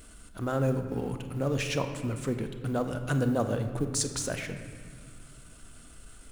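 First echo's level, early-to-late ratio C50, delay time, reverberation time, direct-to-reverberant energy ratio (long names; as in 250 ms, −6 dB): no echo audible, 8.0 dB, no echo audible, 1.9 s, 6.5 dB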